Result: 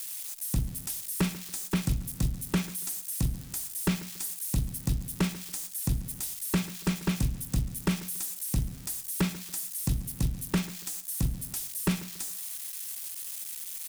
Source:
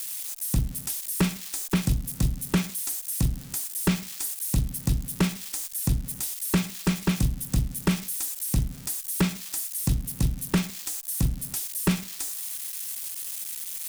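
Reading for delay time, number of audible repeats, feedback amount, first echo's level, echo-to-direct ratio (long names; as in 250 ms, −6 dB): 141 ms, 2, 33%, −17.5 dB, −17.0 dB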